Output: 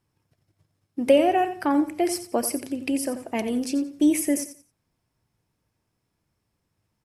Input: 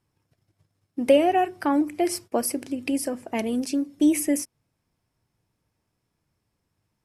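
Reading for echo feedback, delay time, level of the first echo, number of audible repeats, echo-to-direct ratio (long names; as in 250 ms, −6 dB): 25%, 88 ms, −12.0 dB, 2, −11.5 dB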